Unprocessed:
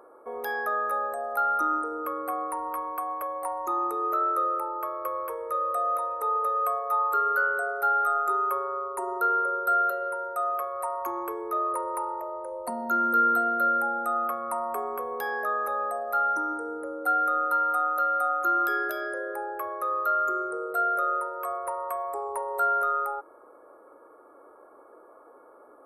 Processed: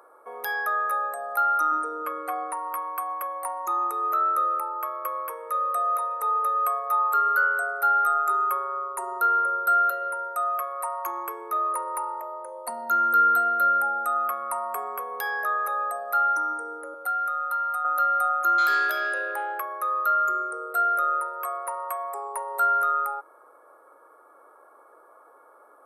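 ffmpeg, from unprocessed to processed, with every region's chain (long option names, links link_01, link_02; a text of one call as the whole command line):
ffmpeg -i in.wav -filter_complex "[0:a]asettb=1/sr,asplit=3[link_01][link_02][link_03];[link_01]atrim=end=1.714[link_04];[link_02]atrim=start=1.71:end=2.53,asetpts=PTS-STARTPTS,afade=type=in:duration=0.004:curve=qsin,afade=type=out:start_time=0.816:duration=0.004:curve=qsin,lowpass=frequency=9700:width=0.5412,lowpass=frequency=9700:width=1.3066,aecho=1:1:6.7:0.78,atrim=end_sample=36162[link_05];[link_03]atrim=start=2.526[link_06];[link_04][link_05]acrossfade=duration=0.004:curve1=hsin:curve2=qsin[link_07];[link_07][link_06]acrossfade=duration=0.004:curve1=qsin:curve2=hsin,asettb=1/sr,asplit=3[link_08][link_09][link_10];[link_08]atrim=end=16.944[link_11];[link_09]atrim=start=16.94:end=17.85,asetpts=PTS-STARTPTS,afade=type=in:duration=0.004:curve=qsin,afade=type=out:start_time=0.906:duration=0.004:curve=qsin,highpass=520,acompressor=threshold=-36dB:ratio=1.5:attack=3.2:release=140:knee=1:detection=peak[link_12];[link_10]atrim=start=17.846[link_13];[link_11][link_12]acrossfade=duration=0.004:curve1=hsin:curve2=qsin[link_14];[link_14][link_13]acrossfade=duration=0.004:curve1=qsin:curve2=hsin,asettb=1/sr,asplit=3[link_15][link_16][link_17];[link_15]atrim=end=18.584[link_18];[link_16]atrim=start=18.58:end=19.6,asetpts=PTS-STARTPTS,afade=type=in:duration=0.004:curve=qsin,afade=type=out:start_time=1.016:duration=0.004:curve=qsin,asplit=2[link_19][link_20];[link_20]highpass=frequency=720:poles=1,volume=13dB,asoftclip=type=tanh:threshold=-15dB[link_21];[link_19][link_21]amix=inputs=2:normalize=0,lowpass=frequency=1100:poles=1,volume=-6dB,highshelf=frequency=3500:gain=11.5[link_22];[link_17]atrim=start=19.596[link_23];[link_18][link_22]acrossfade=duration=0.004:curve1=hsin:curve2=qsin[link_24];[link_24][link_23]acrossfade=duration=0.004:curve1=qsin:curve2=hsin,highpass=frequency=470:poles=1,tiltshelf=frequency=690:gain=-6" out.wav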